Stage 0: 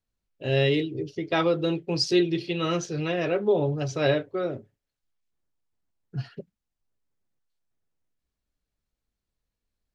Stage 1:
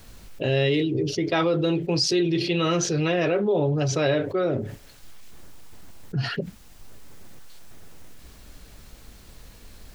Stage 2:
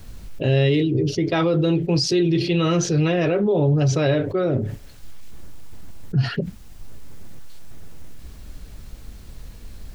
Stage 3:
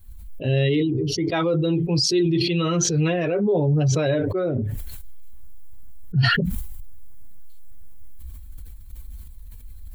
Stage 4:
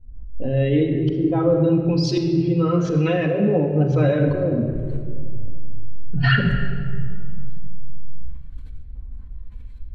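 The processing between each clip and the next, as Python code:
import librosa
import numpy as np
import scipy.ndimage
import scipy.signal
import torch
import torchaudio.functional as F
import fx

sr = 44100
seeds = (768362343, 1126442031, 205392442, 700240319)

y1 = fx.env_flatten(x, sr, amount_pct=70)
y1 = F.gain(torch.from_numpy(y1), -2.5).numpy()
y2 = fx.low_shelf(y1, sr, hz=240.0, db=9.5)
y3 = fx.bin_expand(y2, sr, power=1.5)
y3 = fx.sustainer(y3, sr, db_per_s=26.0)
y4 = fx.filter_lfo_lowpass(y3, sr, shape='saw_up', hz=0.92, low_hz=460.0, high_hz=3800.0, q=0.78)
y4 = fx.room_shoebox(y4, sr, seeds[0], volume_m3=3700.0, walls='mixed', distance_m=2.0)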